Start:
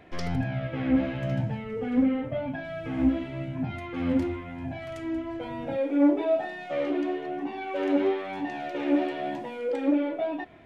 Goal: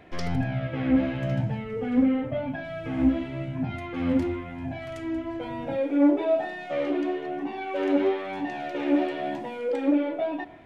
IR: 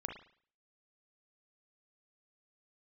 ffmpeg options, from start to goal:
-filter_complex "[0:a]asplit=2[s0][s1];[1:a]atrim=start_sample=2205,asetrate=23814,aresample=44100[s2];[s1][s2]afir=irnorm=-1:irlink=0,volume=0.15[s3];[s0][s3]amix=inputs=2:normalize=0"

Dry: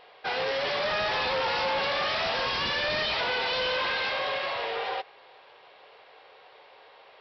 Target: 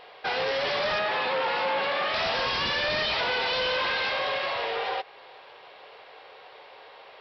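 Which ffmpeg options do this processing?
-filter_complex "[0:a]asplit=2[s0][s1];[s1]acompressor=threshold=0.0141:ratio=6,volume=0.944[s2];[s0][s2]amix=inputs=2:normalize=0,asettb=1/sr,asplit=3[s3][s4][s5];[s3]atrim=end=0.994[s6];[s4]atrim=start=0.99:end=2.14,asetpts=PTS-STARTPTS,afade=t=in:d=0.004:c=qsin,afade=t=out:st=1.146:d=0.004:c=qsin,highpass=180,lowpass=3300[s7];[s5]atrim=start=2.136[s8];[s6][s7]acrossfade=d=0.004:c1=hsin:c2=qsin[s9];[s9][s8]acrossfade=d=0.004:c1=qsin:c2=hsin,volume=0.891"

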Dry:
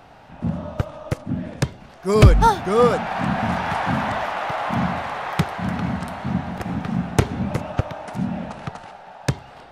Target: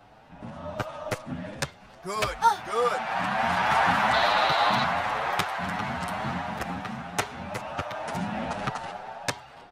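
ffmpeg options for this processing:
-filter_complex "[0:a]acrossover=split=630[s0][s1];[s0]acompressor=threshold=0.0178:ratio=6[s2];[s2][s1]amix=inputs=2:normalize=0,asettb=1/sr,asplit=3[s3][s4][s5];[s3]atrim=end=4.134[s6];[s4]atrim=start=4.13:end=4.84,asetpts=PTS-STARTPTS,afade=t=in:d=0.004:c=qsin,afade=t=out:st=0.706:d=0.004:c=qsin,equalizer=f=4000:t=o:w=0.37:g=15[s7];[s5]atrim=start=4.836[s8];[s6][s7]acrossfade=d=0.004:c1=hsin:c2=qsin[s9];[s9][s8]acrossfade=d=0.004:c1=qsin:c2=hsin,dynaudnorm=f=290:g=5:m=4.47,asplit=2[s10][s11];[s11]adelay=8,afreqshift=2.8[s12];[s10][s12]amix=inputs=2:normalize=1,volume=0.631"

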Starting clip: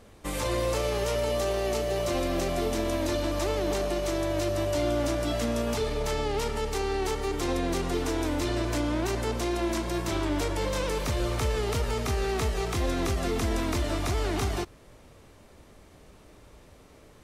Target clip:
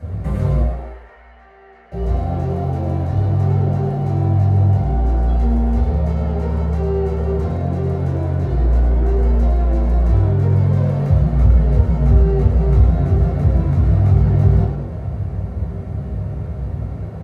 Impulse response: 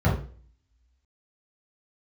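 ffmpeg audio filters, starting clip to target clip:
-filter_complex "[0:a]acompressor=threshold=0.01:ratio=16,asettb=1/sr,asplit=3[s0][s1][s2];[s0]atrim=end=0.604[s3];[s1]atrim=start=0.6:end=1.92,asetpts=PTS-STARTPTS,afade=t=in:d=0.004:c=qsin,afade=t=out:st=1.316:d=0.004:c=qsin,bandpass=f=1800:t=q:w=3.6:csg=0[s4];[s2]atrim=start=1.916[s5];[s3][s4]acrossfade=d=0.004:c1=hsin:c2=qsin[s6];[s6][s5]acrossfade=d=0.004:c1=qsin:c2=hsin,asplit=9[s7][s8][s9][s10][s11][s12][s13][s14][s15];[s8]adelay=105,afreqshift=92,volume=0.501[s16];[s9]adelay=210,afreqshift=184,volume=0.292[s17];[s10]adelay=315,afreqshift=276,volume=0.168[s18];[s11]adelay=420,afreqshift=368,volume=0.0977[s19];[s12]adelay=525,afreqshift=460,volume=0.0569[s20];[s13]adelay=630,afreqshift=552,volume=0.0327[s21];[s14]adelay=735,afreqshift=644,volume=0.0191[s22];[s15]adelay=840,afreqshift=736,volume=0.0111[s23];[s7][s16][s17][s18][s19][s20][s21][s22][s23]amix=inputs=9:normalize=0[s24];[1:a]atrim=start_sample=2205[s25];[s24][s25]afir=irnorm=-1:irlink=0,volume=0.794"

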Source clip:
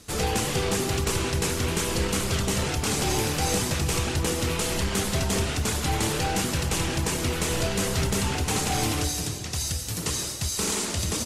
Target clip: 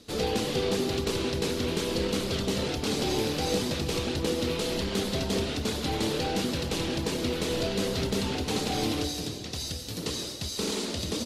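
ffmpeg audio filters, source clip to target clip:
-af "equalizer=f=250:t=o:w=1:g=9,equalizer=f=500:t=o:w=1:g=8,equalizer=f=4000:t=o:w=1:g=10,equalizer=f=8000:t=o:w=1:g=-5,volume=0.376"

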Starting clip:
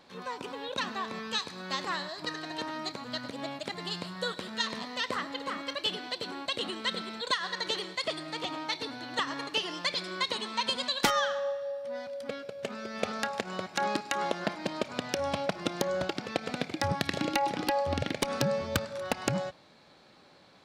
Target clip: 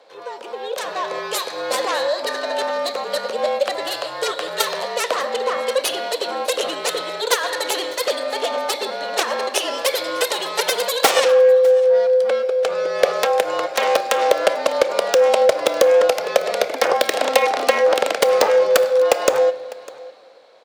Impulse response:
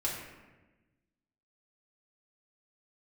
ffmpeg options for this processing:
-filter_complex "[0:a]aeval=exprs='0.224*(cos(1*acos(clip(val(0)/0.224,-1,1)))-cos(1*PI/2))+0.0708*(cos(7*acos(clip(val(0)/0.224,-1,1)))-cos(7*PI/2))':c=same,dynaudnorm=f=140:g=13:m=3.16,aecho=1:1:602:0.0794,afreqshift=-48,highpass=f=530:t=q:w=4.9,asplit=2[s0][s1];[1:a]atrim=start_sample=2205[s2];[s1][s2]afir=irnorm=-1:irlink=0,volume=0.158[s3];[s0][s3]amix=inputs=2:normalize=0,asoftclip=type=tanh:threshold=0.891"

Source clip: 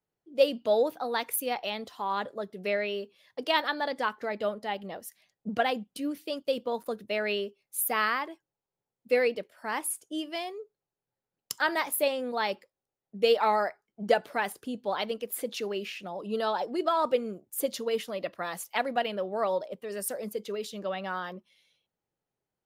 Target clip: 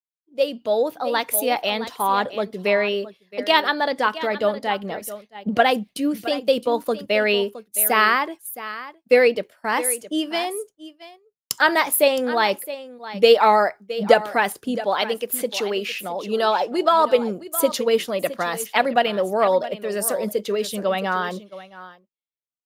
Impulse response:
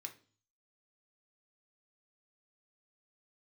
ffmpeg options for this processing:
-filter_complex "[0:a]asettb=1/sr,asplit=3[s0][s1][s2];[s0]atrim=end=14.834[s3];[s1]atrim=start=14.83:end=17.19,asetpts=PTS-STARTPTS,afade=t=in:d=0.004:c=qsin,afade=t=out:st=2.356:d=0.004:c=qsin,lowshelf=f=240:g=-9[s4];[s2]atrim=start=17.186[s5];[s3][s4]acrossfade=d=0.004:c1=hsin:c2=qsin[s6];[s6][s5]acrossfade=d=0.004:c1=qsin:c2=hsin,aecho=1:1:666:0.188,agate=range=0.0224:threshold=0.00631:ratio=3:detection=peak,dynaudnorm=f=280:g=7:m=3.16,volume=1.12"

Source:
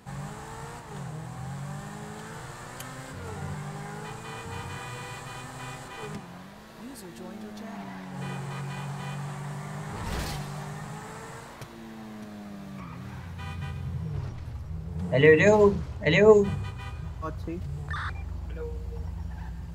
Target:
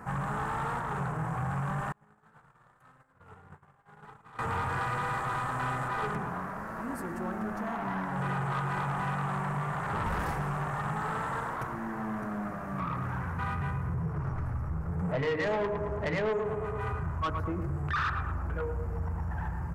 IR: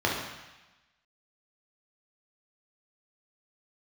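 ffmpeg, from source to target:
-filter_complex "[0:a]asplit=2[s0][s1];[s1]adelay=110,lowpass=f=1800:p=1,volume=0.398,asplit=2[s2][s3];[s3]adelay=110,lowpass=f=1800:p=1,volume=0.53,asplit=2[s4][s5];[s5]adelay=110,lowpass=f=1800:p=1,volume=0.53,asplit=2[s6][s7];[s7]adelay=110,lowpass=f=1800:p=1,volume=0.53,asplit=2[s8][s9];[s9]adelay=110,lowpass=f=1800:p=1,volume=0.53,asplit=2[s10][s11];[s11]adelay=110,lowpass=f=1800:p=1,volume=0.53[s12];[s0][s2][s4][s6][s8][s10][s12]amix=inputs=7:normalize=0,acompressor=threshold=0.0224:ratio=3,firequalizer=gain_entry='entry(500,0);entry(1300,9);entry(3500,-23);entry(5300,-12);entry(10000,-5)':delay=0.05:min_phase=1,asoftclip=type=tanh:threshold=0.0251,highshelf=f=7900:g=-3.5,bandreject=f=50:t=h:w=6,bandreject=f=100:t=h:w=6,bandreject=f=150:t=h:w=6,bandreject=f=200:t=h:w=6,bandreject=f=250:t=h:w=6,bandreject=f=300:t=h:w=6,bandreject=f=350:t=h:w=6,bandreject=f=400:t=h:w=6,bandreject=f=450:t=h:w=6,asettb=1/sr,asplit=3[s13][s14][s15];[s13]atrim=end=1.924[s16];[s14]atrim=start=1.92:end=4.39,asetpts=PTS-STARTPTS,afade=t=in:d=0.004:c=qsin,afade=t=out:st=2.466:d=0.004:c=qsin,agate=range=0.0141:threshold=0.0178:ratio=16:detection=peak[s17];[s15]atrim=start=4.386[s18];[s16][s17]acrossfade=d=0.004:c1=hsin:c2=qsin[s19];[s19][s18]acrossfade=d=0.004:c1=qsin:c2=hsin,volume=2.11"

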